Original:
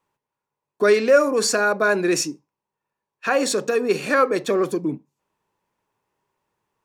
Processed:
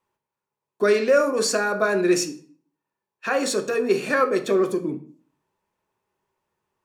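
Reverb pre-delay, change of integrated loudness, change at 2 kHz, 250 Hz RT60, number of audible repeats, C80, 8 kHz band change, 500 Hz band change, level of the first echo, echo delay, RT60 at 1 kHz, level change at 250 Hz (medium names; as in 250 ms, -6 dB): 3 ms, -1.5 dB, -3.0 dB, 0.55 s, no echo, 18.0 dB, -2.5 dB, -1.5 dB, no echo, no echo, 0.45 s, -0.5 dB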